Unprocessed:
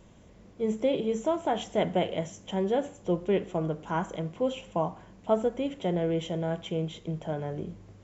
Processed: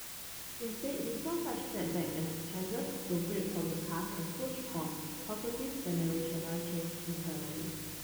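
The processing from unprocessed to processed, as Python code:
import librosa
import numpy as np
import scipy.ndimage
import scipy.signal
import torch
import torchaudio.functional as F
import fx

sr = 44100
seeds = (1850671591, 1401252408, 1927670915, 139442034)

p1 = scipy.signal.sosfilt(scipy.signal.butter(2, 2100.0, 'lowpass', fs=sr, output='sos'), x)
p2 = fx.peak_eq(p1, sr, hz=660.0, db=-11.5, octaves=0.89)
p3 = p2 + fx.echo_split(p2, sr, split_hz=390.0, low_ms=269, high_ms=768, feedback_pct=52, wet_db=-14.5, dry=0)
p4 = fx.rev_fdn(p3, sr, rt60_s=1.5, lf_ratio=1.6, hf_ratio=0.95, size_ms=18.0, drr_db=-0.5)
p5 = fx.vibrato(p4, sr, rate_hz=0.32, depth_cents=51.0)
p6 = fx.quant_dither(p5, sr, seeds[0], bits=6, dither='triangular')
y = p6 * librosa.db_to_amplitude(-9.0)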